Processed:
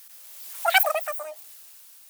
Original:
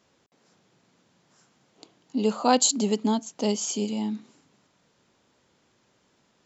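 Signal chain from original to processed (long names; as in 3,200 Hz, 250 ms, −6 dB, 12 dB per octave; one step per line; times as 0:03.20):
spike at every zero crossing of −20 dBFS
source passing by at 0:02.30, 26 m/s, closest 11 metres
change of speed 3.08×
level +3.5 dB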